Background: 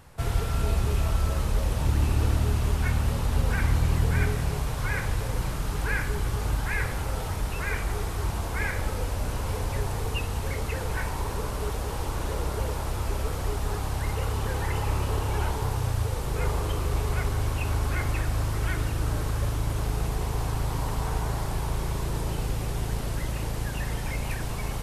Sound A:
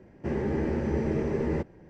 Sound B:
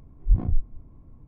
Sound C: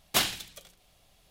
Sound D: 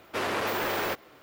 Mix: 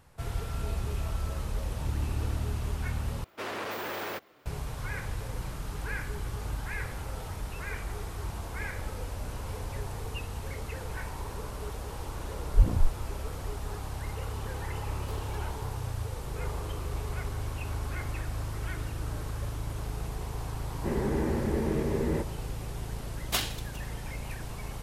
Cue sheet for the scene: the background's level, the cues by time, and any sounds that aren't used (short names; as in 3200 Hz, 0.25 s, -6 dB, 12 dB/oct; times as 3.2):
background -7.5 dB
3.24 replace with D -6.5 dB + HPF 41 Hz
12.28 add B -1.5 dB
14.94 add C -14.5 dB + compressor, threshold -36 dBFS
20.6 add A -1.5 dB
23.18 add C -4.5 dB